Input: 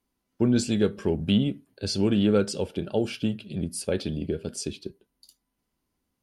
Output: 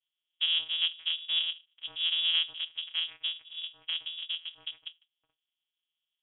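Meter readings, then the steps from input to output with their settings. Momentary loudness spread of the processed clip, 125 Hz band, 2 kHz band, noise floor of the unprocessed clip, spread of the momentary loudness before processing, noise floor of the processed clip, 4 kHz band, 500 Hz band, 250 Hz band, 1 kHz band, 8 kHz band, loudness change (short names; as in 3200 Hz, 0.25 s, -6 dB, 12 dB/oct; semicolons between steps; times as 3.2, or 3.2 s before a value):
14 LU, under -40 dB, +1.5 dB, -80 dBFS, 11 LU, under -85 dBFS, +9.5 dB, under -35 dB, under -40 dB, -14.5 dB, under -40 dB, -3.5 dB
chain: cycle switcher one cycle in 2, inverted; resonant low shelf 270 Hz -11 dB, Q 1.5; vocoder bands 4, saw 165 Hz; air absorption 360 m; inverted band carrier 3600 Hz; gain -5 dB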